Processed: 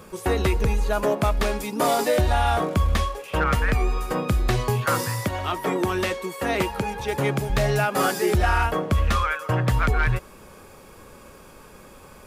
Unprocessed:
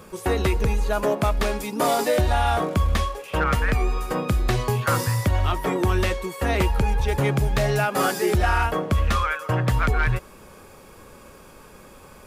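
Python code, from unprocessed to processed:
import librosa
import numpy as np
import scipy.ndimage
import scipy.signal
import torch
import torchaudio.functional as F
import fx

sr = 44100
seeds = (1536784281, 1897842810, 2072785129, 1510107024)

y = fx.highpass(x, sr, hz=150.0, slope=12, at=(4.85, 7.5))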